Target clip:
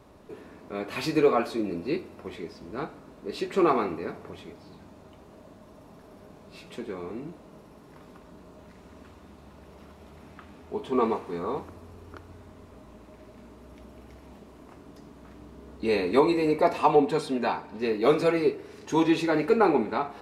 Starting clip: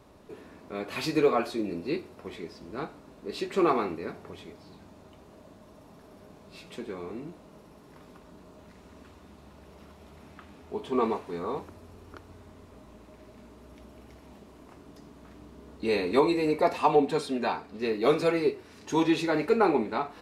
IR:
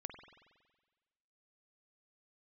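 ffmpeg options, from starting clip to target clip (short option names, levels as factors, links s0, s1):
-filter_complex "[0:a]asplit=2[s0][s1];[1:a]atrim=start_sample=2205,lowpass=3100[s2];[s1][s2]afir=irnorm=-1:irlink=0,volume=0.422[s3];[s0][s3]amix=inputs=2:normalize=0"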